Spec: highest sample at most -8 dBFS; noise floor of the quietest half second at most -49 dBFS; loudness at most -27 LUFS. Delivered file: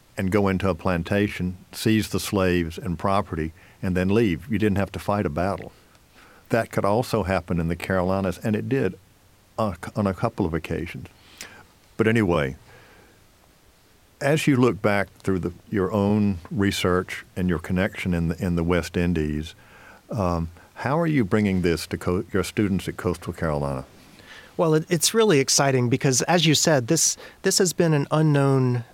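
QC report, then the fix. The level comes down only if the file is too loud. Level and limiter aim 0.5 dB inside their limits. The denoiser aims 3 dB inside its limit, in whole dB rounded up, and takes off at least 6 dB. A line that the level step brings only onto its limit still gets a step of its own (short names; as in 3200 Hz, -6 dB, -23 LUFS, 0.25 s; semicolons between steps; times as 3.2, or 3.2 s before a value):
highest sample -6.5 dBFS: fail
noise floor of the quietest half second -56 dBFS: OK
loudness -23.0 LUFS: fail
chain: gain -4.5 dB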